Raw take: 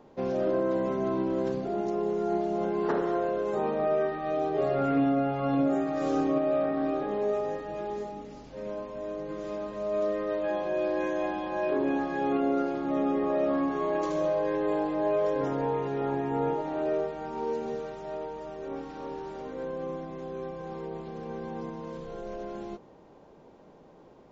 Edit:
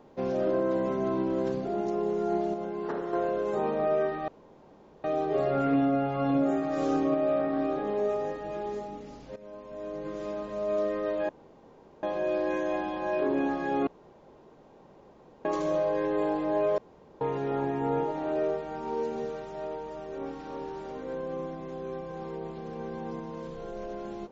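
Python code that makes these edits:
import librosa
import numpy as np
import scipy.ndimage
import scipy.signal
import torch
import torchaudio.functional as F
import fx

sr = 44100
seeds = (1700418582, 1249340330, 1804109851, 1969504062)

y = fx.edit(x, sr, fx.clip_gain(start_s=2.54, length_s=0.59, db=-5.5),
    fx.insert_room_tone(at_s=4.28, length_s=0.76),
    fx.fade_in_from(start_s=8.6, length_s=0.67, floor_db=-15.0),
    fx.insert_room_tone(at_s=10.53, length_s=0.74),
    fx.room_tone_fill(start_s=12.37, length_s=1.58),
    fx.room_tone_fill(start_s=15.28, length_s=0.43), tone=tone)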